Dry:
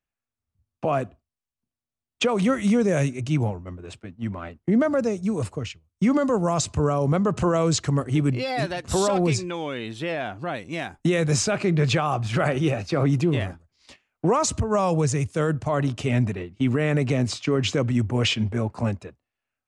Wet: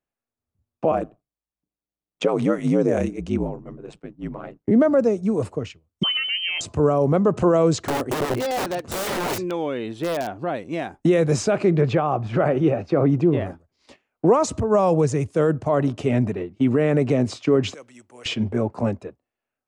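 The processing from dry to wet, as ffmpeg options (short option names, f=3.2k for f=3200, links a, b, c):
-filter_complex "[0:a]asettb=1/sr,asplit=3[a][b][c];[a]atrim=end=0.914[d];[b]atrim=start=0.91:end=4.71,asetpts=PTS-STARTPTS,afade=t=in:d=0.004:c=qsin,afade=t=out:st=3.796:d=0.004:c=qsin,aeval=exprs='val(0)*sin(2*PI*54*n/s)':c=same[e];[c]atrim=start=4.706[f];[d][e]acrossfade=d=0.004:c1=hsin:c2=qsin[g];[g][f]acrossfade=d=0.004:c1=qsin:c2=hsin,asettb=1/sr,asplit=3[h][i][j];[h]atrim=end=6.034[k];[i]atrim=start=6.03:end=6.61,asetpts=PTS-STARTPTS,afade=t=in:d=0.004:c=qsin,afade=t=out:st=0.576:d=0.004:c=qsin,lowpass=f=2.8k:t=q:w=0.5098,lowpass=f=2.8k:t=q:w=0.6013,lowpass=f=2.8k:t=q:w=0.9,lowpass=f=2.8k:t=q:w=2.563,afreqshift=-3300[l];[j]atrim=start=6.606[m];[k][l]acrossfade=d=0.004:c1=hsin:c2=qsin[n];[n][m]acrossfade=d=0.004:c1=qsin:c2=hsin,asettb=1/sr,asplit=3[o][p][q];[o]atrim=end=7.794[r];[p]atrim=start=7.79:end=10.46,asetpts=PTS-STARTPTS,afade=t=in:d=0.004:c=qsin,afade=t=out:st=2.666:d=0.004:c=qsin,aeval=exprs='(mod(10.6*val(0)+1,2)-1)/10.6':c=same[s];[q]atrim=start=10.456[t];[r][s]acrossfade=d=0.004:c1=hsin:c2=qsin[u];[u][t]acrossfade=d=0.004:c1=qsin:c2=hsin,asettb=1/sr,asplit=3[v][w][x];[v]atrim=end=11.814[y];[w]atrim=start=11.81:end=13.46,asetpts=PTS-STARTPTS,afade=t=in:d=0.004:c=qsin,afade=t=out:st=1.646:d=0.004:c=qsin,aemphasis=mode=reproduction:type=75kf[z];[x]atrim=start=13.456[aa];[y][z]acrossfade=d=0.004:c1=hsin:c2=qsin[ab];[ab][aa]acrossfade=d=0.004:c1=qsin:c2=hsin,asettb=1/sr,asplit=3[ac][ad][ae];[ac]atrim=end=17.744[af];[ad]atrim=start=17.74:end=18.26,asetpts=PTS-STARTPTS,afade=t=in:d=0.004:c=qsin,afade=t=out:st=0.516:d=0.004:c=qsin,aderivative[ag];[ae]atrim=start=18.256[ah];[af][ag]acrossfade=d=0.004:c1=hsin:c2=qsin[ai];[ai][ah]acrossfade=d=0.004:c1=qsin:c2=hsin,equalizer=f=430:w=0.41:g=11.5,volume=-5.5dB"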